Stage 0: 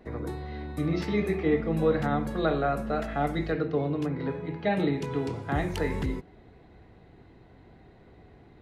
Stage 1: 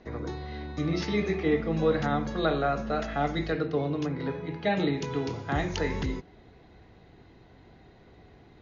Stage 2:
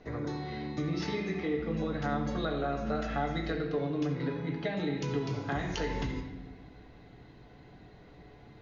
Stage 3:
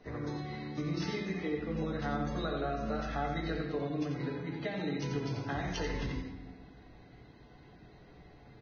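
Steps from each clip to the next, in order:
Chebyshev low-pass filter 6,800 Hz, order 10; high-shelf EQ 4,000 Hz +11 dB
downward compressor, threshold −30 dBFS, peak gain reduction 10.5 dB; on a send at −2 dB: convolution reverb RT60 1.2 s, pre-delay 7 ms; on the sum: level −1.5 dB
single-tap delay 88 ms −6.5 dB; level −3.5 dB; Ogg Vorbis 16 kbit/s 16,000 Hz

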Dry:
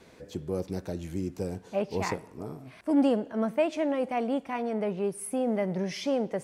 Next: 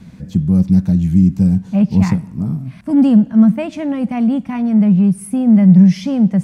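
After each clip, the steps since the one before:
low shelf with overshoot 280 Hz +13.5 dB, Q 3
level +5 dB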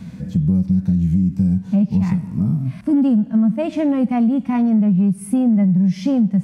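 harmonic and percussive parts rebalanced percussive −12 dB
brickwall limiter −6.5 dBFS, peak gain reduction 5.5 dB
downward compressor 4 to 1, threshold −21 dBFS, peak gain reduction 10.5 dB
level +6 dB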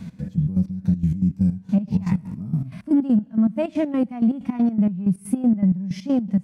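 gate pattern "x.x.x.x.." 160 BPM −12 dB
level −1.5 dB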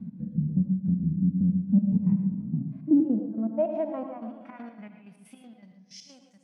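band-pass filter sweep 230 Hz → 6,600 Hz, 0:02.55–0:06.13
on a send: feedback echo with a low-pass in the loop 144 ms, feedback 61%, low-pass 2,200 Hz, level −12 dB
on the sum: reverb whose tail is shaped and stops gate 140 ms rising, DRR 7 dB

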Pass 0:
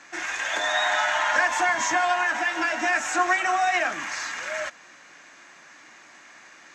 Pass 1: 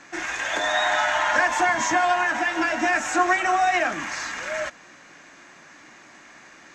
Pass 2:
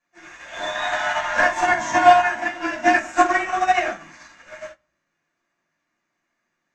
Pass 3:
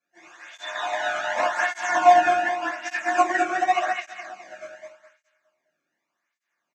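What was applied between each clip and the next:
low-shelf EQ 450 Hz +9.5 dB
rectangular room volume 540 cubic metres, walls furnished, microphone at 5.8 metres; expander for the loud parts 2.5 to 1, over −31 dBFS
repeating echo 207 ms, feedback 37%, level −3.5 dB; through-zero flanger with one copy inverted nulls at 0.86 Hz, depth 1.1 ms; level −2.5 dB

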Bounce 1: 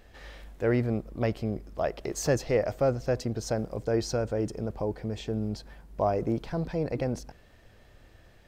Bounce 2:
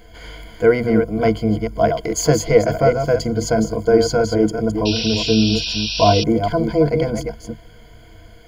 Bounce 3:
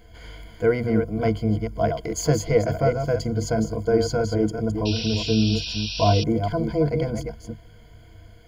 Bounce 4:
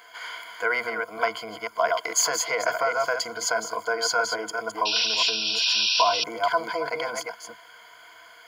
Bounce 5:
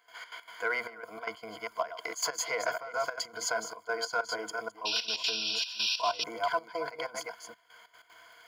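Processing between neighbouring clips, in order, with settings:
delay that plays each chunk backwards 209 ms, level −6.5 dB; EQ curve with evenly spaced ripples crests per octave 1.8, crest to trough 18 dB; sound drawn into the spectrogram noise, 0:04.85–0:06.24, 2,400–5,800 Hz −32 dBFS; level +7.5 dB
parametric band 90 Hz +7 dB 1.6 octaves; level −7 dB
brickwall limiter −16 dBFS, peak gain reduction 9 dB; high-pass with resonance 1,100 Hz, resonance Q 2.5; level +8 dB
surface crackle 45 per second −44 dBFS; in parallel at −10 dB: hard clipping −19 dBFS, distortion −14 dB; on the sum: gate pattern ".xx.x.xxxxx." 189 BPM −12 dB; level −8.5 dB

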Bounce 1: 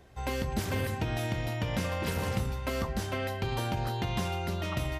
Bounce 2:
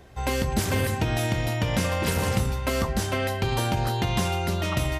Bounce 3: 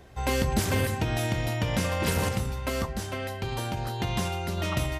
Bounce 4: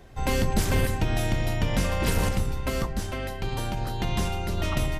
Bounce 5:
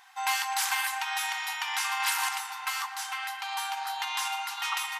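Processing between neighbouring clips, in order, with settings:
dynamic equaliser 8,700 Hz, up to +5 dB, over −55 dBFS, Q 0.84; level +6.5 dB
sample-and-hold tremolo
sub-octave generator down 2 octaves, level +2 dB
linear-phase brick-wall high-pass 740 Hz; tape delay 119 ms, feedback 88%, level −14.5 dB, low-pass 4,100 Hz; level +3.5 dB

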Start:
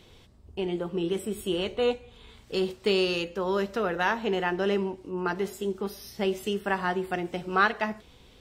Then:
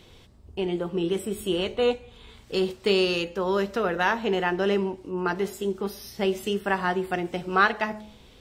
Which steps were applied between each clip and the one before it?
hum removal 212.8 Hz, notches 4
level +2.5 dB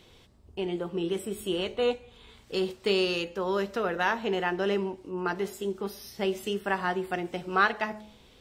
low-shelf EQ 170 Hz −4 dB
level −3 dB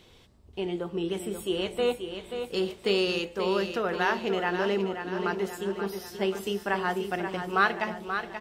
repeating echo 532 ms, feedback 50%, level −8 dB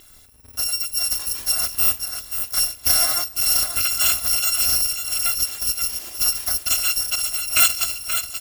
samples in bit-reversed order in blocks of 256 samples
level +7.5 dB

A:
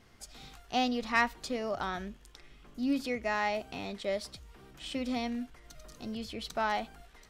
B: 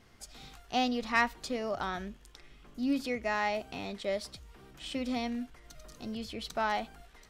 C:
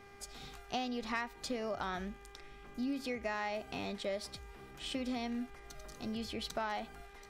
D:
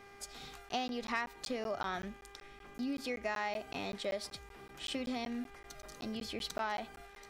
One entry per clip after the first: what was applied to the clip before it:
no processing that can be heard
downward compressor 6 to 1, threshold −34 dBFS, peak gain reduction 12.5 dB; hum with harmonics 400 Hz, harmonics 6, −58 dBFS −3 dB per octave
low-shelf EQ 200 Hz −6.5 dB; regular buffer underruns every 0.19 s, samples 512, zero, from 0:00.69; level +1.5 dB

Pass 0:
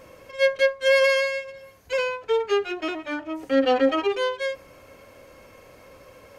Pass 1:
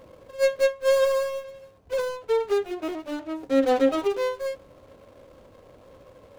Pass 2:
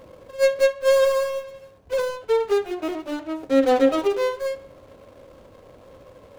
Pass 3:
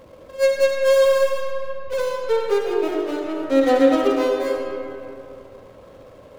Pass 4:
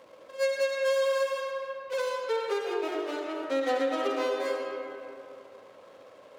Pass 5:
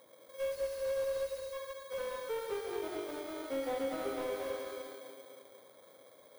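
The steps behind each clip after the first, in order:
running median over 25 samples
tape delay 67 ms, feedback 57%, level −17.5 dB, low-pass 5,000 Hz; level +3 dB
comb and all-pass reverb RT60 2.8 s, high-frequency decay 0.55×, pre-delay 30 ms, DRR 1 dB
downward compressor 4 to 1, threshold −17 dBFS, peak gain reduction 7 dB; meter weighting curve A; level −4 dB
samples in bit-reversed order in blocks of 16 samples; time-frequency box erased 0:00.52–0:01.53, 580–3,600 Hz; slew-rate limiting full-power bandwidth 53 Hz; level −7 dB

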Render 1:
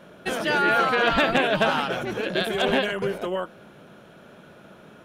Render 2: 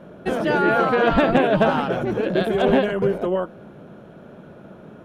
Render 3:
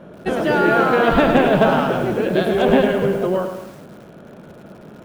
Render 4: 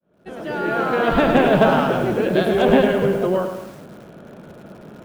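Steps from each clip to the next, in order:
tilt shelving filter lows +8 dB, about 1,300 Hz
feedback echo at a low word length 106 ms, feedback 55%, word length 7 bits, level −7 dB; level +2 dB
fade in at the beginning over 1.51 s

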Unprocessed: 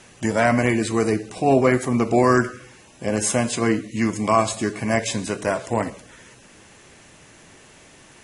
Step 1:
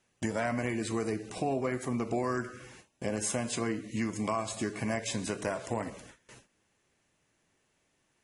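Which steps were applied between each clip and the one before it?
noise gate with hold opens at −35 dBFS
downward compressor 4 to 1, threshold −25 dBFS, peak gain reduction 11.5 dB
level −4.5 dB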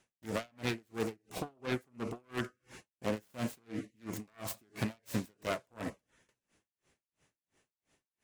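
phase distortion by the signal itself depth 0.37 ms
tremolo with a sine in dB 2.9 Hz, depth 39 dB
level +2.5 dB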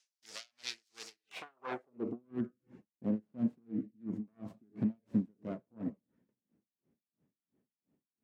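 band-pass filter sweep 5,100 Hz → 220 Hz, 0:01.12–0:02.18
level +6.5 dB

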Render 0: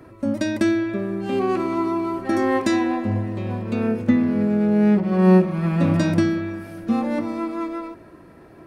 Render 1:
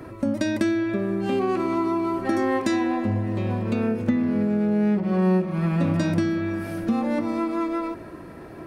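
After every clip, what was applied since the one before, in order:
downward compressor 2.5 to 1, threshold −30 dBFS, peak gain reduction 13.5 dB
level +6 dB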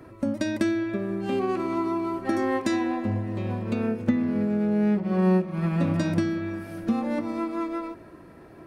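expander for the loud parts 1.5 to 1, over −32 dBFS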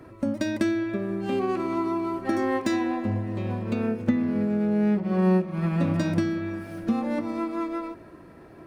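running median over 3 samples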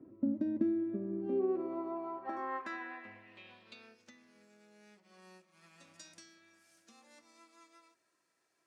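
band-pass filter sweep 270 Hz → 6,900 Hz, 0:01.10–0:04.25
level −4 dB

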